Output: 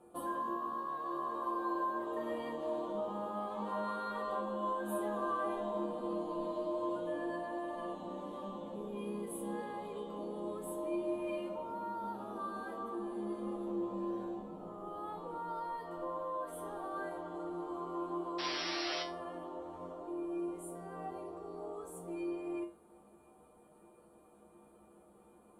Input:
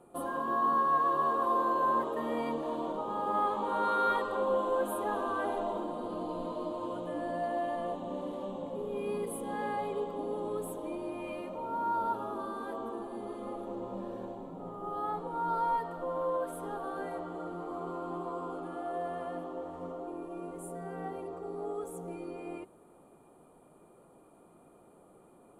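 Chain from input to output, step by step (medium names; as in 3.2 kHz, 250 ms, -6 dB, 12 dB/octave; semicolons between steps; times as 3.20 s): compression 3:1, threshold -33 dBFS, peak gain reduction 7.5 dB; painted sound noise, 18.38–19.03 s, 490–5800 Hz -37 dBFS; feedback comb 69 Hz, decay 0.3 s, harmonics odd, mix 90%; trim +7.5 dB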